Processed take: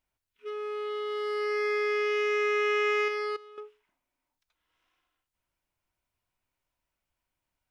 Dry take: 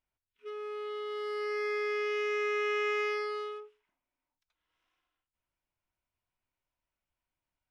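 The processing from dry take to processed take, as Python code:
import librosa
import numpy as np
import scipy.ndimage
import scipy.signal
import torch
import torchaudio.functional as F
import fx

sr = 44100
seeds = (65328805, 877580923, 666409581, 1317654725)

y = fx.level_steps(x, sr, step_db=18, at=(3.08, 3.58))
y = F.gain(torch.from_numpy(y), 4.5).numpy()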